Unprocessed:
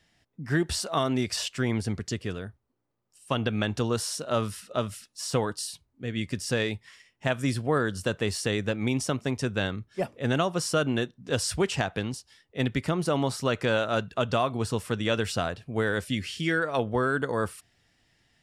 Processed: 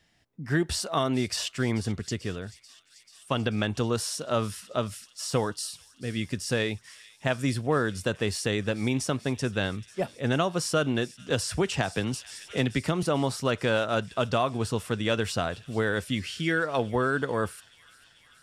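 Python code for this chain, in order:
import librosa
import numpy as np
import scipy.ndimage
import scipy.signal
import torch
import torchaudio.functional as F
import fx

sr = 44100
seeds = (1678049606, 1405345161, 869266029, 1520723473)

p1 = x + fx.echo_wet_highpass(x, sr, ms=438, feedback_pct=78, hz=2800.0, wet_db=-18, dry=0)
y = fx.band_squash(p1, sr, depth_pct=70, at=(11.3, 13.03))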